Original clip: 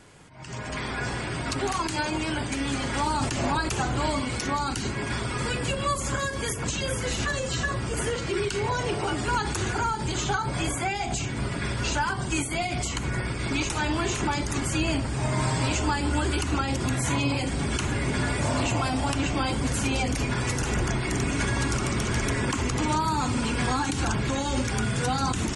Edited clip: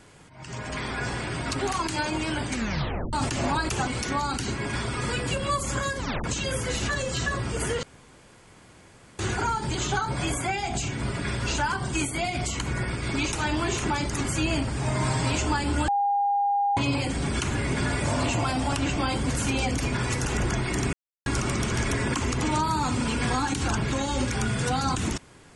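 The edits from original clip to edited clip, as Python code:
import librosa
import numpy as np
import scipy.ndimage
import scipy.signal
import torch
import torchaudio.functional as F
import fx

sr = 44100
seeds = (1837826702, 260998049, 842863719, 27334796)

y = fx.edit(x, sr, fx.tape_stop(start_s=2.51, length_s=0.62),
    fx.cut(start_s=3.87, length_s=0.37),
    fx.tape_stop(start_s=6.35, length_s=0.26),
    fx.room_tone_fill(start_s=8.2, length_s=1.36),
    fx.bleep(start_s=16.25, length_s=0.89, hz=808.0, db=-20.5),
    fx.silence(start_s=21.3, length_s=0.33), tone=tone)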